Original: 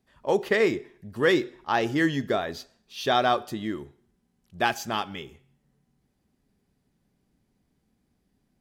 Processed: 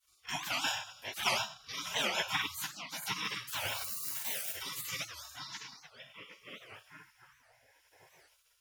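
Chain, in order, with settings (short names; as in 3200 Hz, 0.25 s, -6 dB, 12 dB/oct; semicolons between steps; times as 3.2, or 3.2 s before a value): 3.53–4.59 switching spikes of -37 dBFS; Butterworth band-stop 1200 Hz, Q 3.4; high shelf 8500 Hz +8.5 dB; delay with a stepping band-pass 0.764 s, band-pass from 3000 Hz, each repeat -1.4 oct, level -7.5 dB; reverb RT60 0.50 s, pre-delay 3 ms, DRR -6 dB; in parallel at +2 dB: compressor, threshold -19 dBFS, peak gain reduction 16.5 dB; on the sum: rotary speaker horn 0.7 Hz; spectral gate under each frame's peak -30 dB weak; dynamic EQ 4800 Hz, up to -5 dB, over -45 dBFS, Q 1.4; record warp 78 rpm, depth 250 cents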